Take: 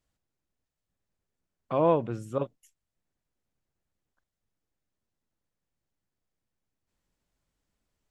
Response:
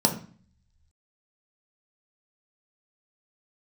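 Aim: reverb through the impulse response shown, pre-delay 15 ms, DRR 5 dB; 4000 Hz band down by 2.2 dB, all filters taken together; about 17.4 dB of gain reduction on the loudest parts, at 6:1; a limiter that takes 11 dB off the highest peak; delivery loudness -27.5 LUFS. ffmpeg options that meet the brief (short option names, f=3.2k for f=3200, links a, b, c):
-filter_complex "[0:a]equalizer=f=4k:t=o:g=-3,acompressor=threshold=-37dB:ratio=6,alimiter=level_in=12dB:limit=-24dB:level=0:latency=1,volume=-12dB,asplit=2[a][b];[1:a]atrim=start_sample=2205,adelay=15[c];[b][c]afir=irnorm=-1:irlink=0,volume=-18dB[d];[a][d]amix=inputs=2:normalize=0,volume=16.5dB"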